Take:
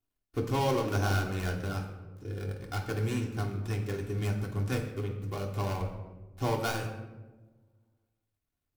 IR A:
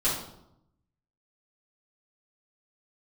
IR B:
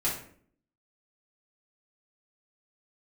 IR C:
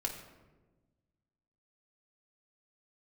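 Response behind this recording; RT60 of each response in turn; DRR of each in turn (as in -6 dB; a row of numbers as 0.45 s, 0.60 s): C; 0.80 s, 0.55 s, 1.2 s; -9.5 dB, -7.5 dB, -0.5 dB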